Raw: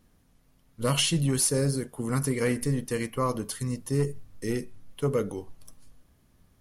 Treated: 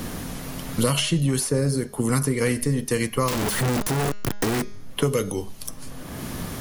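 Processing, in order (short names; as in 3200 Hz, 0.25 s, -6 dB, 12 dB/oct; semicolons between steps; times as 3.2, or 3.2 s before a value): 3.28–4.62 infinite clipping; de-hum 205.6 Hz, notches 34; three-band squash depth 100%; gain +4.5 dB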